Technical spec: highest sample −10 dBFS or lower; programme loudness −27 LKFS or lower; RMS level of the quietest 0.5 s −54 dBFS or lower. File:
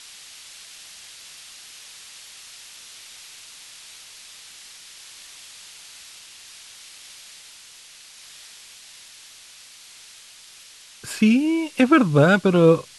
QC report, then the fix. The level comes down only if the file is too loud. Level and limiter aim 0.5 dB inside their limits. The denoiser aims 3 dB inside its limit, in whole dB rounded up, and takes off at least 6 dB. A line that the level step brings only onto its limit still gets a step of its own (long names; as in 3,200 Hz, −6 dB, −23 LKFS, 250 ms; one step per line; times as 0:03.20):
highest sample −4.5 dBFS: out of spec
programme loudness −18.0 LKFS: out of spec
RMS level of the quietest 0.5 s −47 dBFS: out of spec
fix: level −9.5 dB